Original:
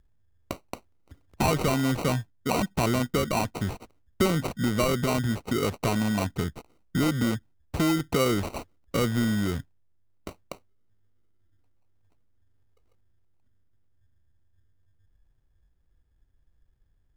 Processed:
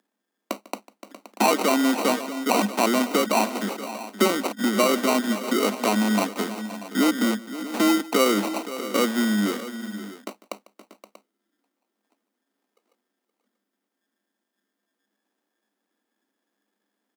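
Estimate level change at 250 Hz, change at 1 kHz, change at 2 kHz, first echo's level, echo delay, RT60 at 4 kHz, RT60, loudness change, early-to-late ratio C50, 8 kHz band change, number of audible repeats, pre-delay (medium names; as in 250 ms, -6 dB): +4.5 dB, +6.5 dB, +5.5 dB, -20.0 dB, 148 ms, no reverb, no reverb, +4.0 dB, no reverb, +6.0 dB, 3, no reverb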